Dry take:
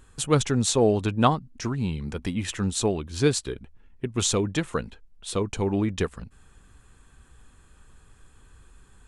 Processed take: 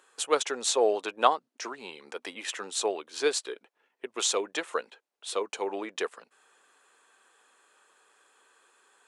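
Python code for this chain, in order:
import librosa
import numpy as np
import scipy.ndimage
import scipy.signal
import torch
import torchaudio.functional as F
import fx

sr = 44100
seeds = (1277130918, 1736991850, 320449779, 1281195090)

y = scipy.signal.sosfilt(scipy.signal.butter(4, 440.0, 'highpass', fs=sr, output='sos'), x)
y = fx.high_shelf(y, sr, hz=8000.0, db=-6.0)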